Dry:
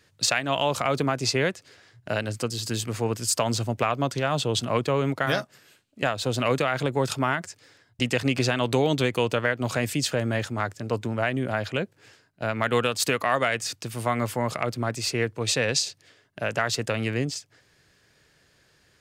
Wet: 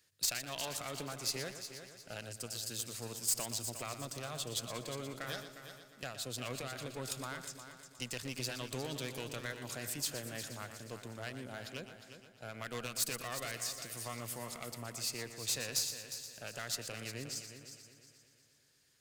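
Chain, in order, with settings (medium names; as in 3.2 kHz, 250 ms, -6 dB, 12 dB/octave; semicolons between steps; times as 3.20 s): single-diode clipper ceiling -25 dBFS; pre-emphasis filter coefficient 0.8; multi-head delay 119 ms, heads first and third, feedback 51%, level -11 dB; trim -4 dB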